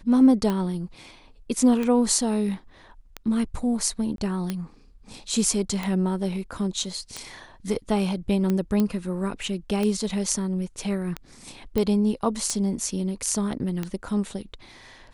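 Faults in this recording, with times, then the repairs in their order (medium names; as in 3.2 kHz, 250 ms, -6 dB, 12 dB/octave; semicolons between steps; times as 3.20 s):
tick 45 rpm -14 dBFS
4.16–4.18 s: dropout 22 ms
8.80 s: pop -12 dBFS
11.78 s: pop -13 dBFS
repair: de-click; interpolate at 4.16 s, 22 ms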